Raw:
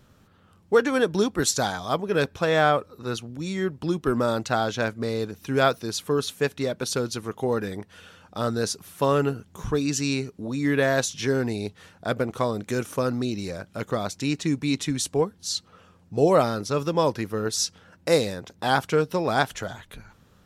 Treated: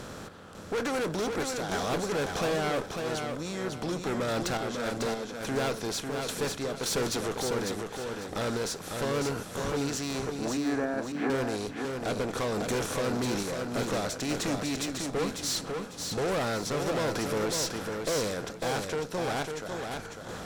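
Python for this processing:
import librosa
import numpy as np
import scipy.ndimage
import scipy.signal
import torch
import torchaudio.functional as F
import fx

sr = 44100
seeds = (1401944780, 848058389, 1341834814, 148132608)

y = fx.bin_compress(x, sr, power=0.6)
y = fx.tremolo_random(y, sr, seeds[0], hz=3.5, depth_pct=80)
y = fx.tube_stage(y, sr, drive_db=27.0, bias=0.35)
y = fx.cabinet(y, sr, low_hz=170.0, low_slope=24, high_hz=2100.0, hz=(270.0, 770.0, 1600.0), db=(8, 5, 3), at=(10.57, 11.3))
y = fx.echo_feedback(y, sr, ms=549, feedback_pct=29, wet_db=-5.0)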